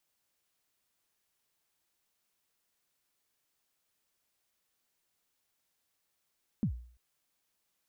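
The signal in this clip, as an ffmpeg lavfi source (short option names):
-f lavfi -i "aevalsrc='0.0631*pow(10,-3*t/0.51)*sin(2*PI*(250*0.09/log(60/250)*(exp(log(60/250)*min(t,0.09)/0.09)-1)+60*max(t-0.09,0)))':d=0.34:s=44100"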